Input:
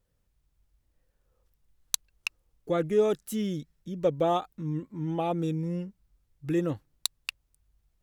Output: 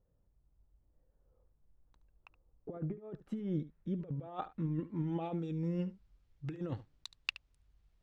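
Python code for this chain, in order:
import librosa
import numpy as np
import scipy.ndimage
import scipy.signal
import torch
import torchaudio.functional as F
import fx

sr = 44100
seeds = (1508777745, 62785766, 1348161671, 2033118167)

p1 = fx.over_compress(x, sr, threshold_db=-32.0, ratio=-0.5)
p2 = fx.filter_sweep_lowpass(p1, sr, from_hz=810.0, to_hz=4500.0, start_s=2.47, end_s=5.62, q=0.8)
p3 = p2 + fx.echo_single(p2, sr, ms=72, db=-16.0, dry=0)
y = F.gain(torch.from_numpy(p3), -4.5).numpy()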